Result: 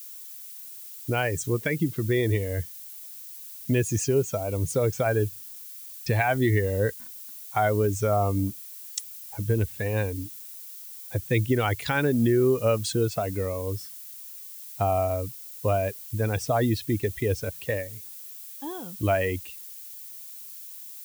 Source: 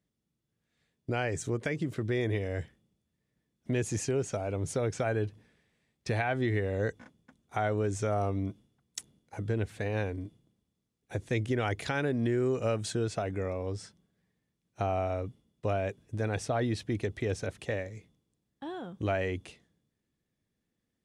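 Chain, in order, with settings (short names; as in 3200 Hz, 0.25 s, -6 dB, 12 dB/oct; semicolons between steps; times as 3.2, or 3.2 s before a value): per-bin expansion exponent 1.5; added noise violet -51 dBFS; gain +9 dB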